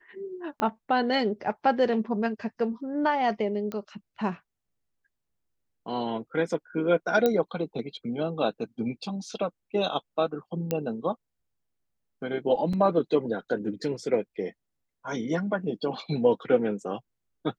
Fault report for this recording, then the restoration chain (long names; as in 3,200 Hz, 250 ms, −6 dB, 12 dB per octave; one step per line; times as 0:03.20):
0:00.60: click −15 dBFS
0:03.72: click −21 dBFS
0:07.26: click −11 dBFS
0:10.71: click −13 dBFS
0:12.73: drop-out 4.3 ms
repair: click removal
repair the gap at 0:12.73, 4.3 ms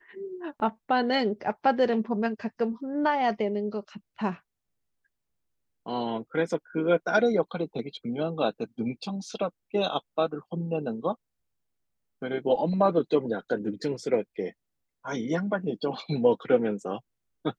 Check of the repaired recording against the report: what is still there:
0:00.60: click